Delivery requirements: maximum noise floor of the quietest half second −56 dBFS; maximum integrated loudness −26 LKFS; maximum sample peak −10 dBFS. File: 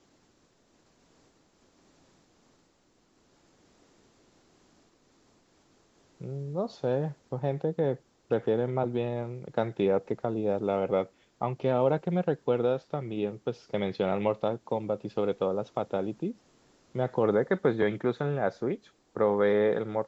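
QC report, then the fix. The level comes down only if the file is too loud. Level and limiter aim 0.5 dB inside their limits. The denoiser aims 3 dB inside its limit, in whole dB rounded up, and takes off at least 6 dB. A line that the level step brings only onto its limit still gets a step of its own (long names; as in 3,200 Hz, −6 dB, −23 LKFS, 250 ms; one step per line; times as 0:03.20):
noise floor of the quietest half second −67 dBFS: in spec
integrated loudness −30.0 LKFS: in spec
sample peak −12.5 dBFS: in spec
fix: no processing needed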